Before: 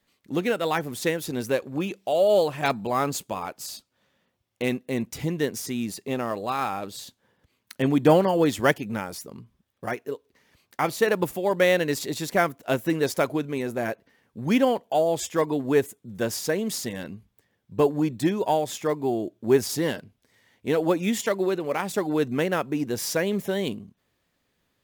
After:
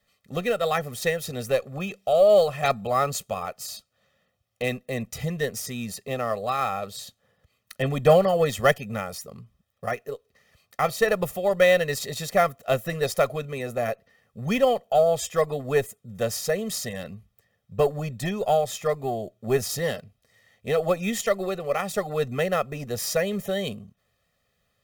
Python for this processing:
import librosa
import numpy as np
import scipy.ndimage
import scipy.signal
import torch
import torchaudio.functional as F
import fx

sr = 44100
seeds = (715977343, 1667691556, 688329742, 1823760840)

y = fx.cheby_harmonics(x, sr, harmonics=(6,), levels_db=(-31,), full_scale_db=-6.0)
y = y + 0.91 * np.pad(y, (int(1.6 * sr / 1000.0), 0))[:len(y)]
y = y * librosa.db_to_amplitude(-2.0)